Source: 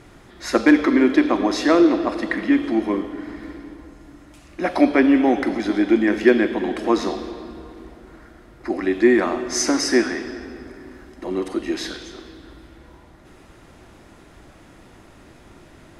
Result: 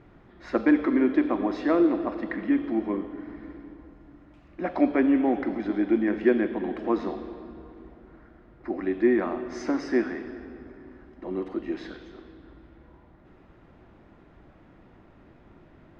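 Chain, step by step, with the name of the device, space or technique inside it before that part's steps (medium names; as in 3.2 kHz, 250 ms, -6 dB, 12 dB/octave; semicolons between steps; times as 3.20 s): phone in a pocket (low-pass 3.3 kHz 12 dB/octave; peaking EQ 180 Hz +2.5 dB 0.77 oct; treble shelf 2.2 kHz -8.5 dB); trim -6.5 dB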